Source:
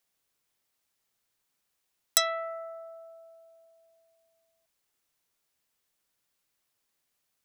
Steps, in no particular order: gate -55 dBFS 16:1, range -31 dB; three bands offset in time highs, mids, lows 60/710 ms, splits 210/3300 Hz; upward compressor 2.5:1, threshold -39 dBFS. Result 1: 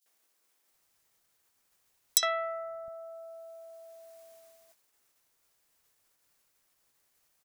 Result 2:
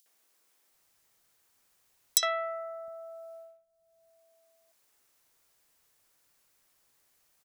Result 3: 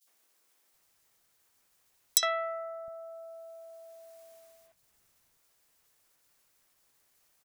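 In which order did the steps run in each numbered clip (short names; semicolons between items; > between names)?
upward compressor > three bands offset in time > gate; gate > upward compressor > three bands offset in time; upward compressor > gate > three bands offset in time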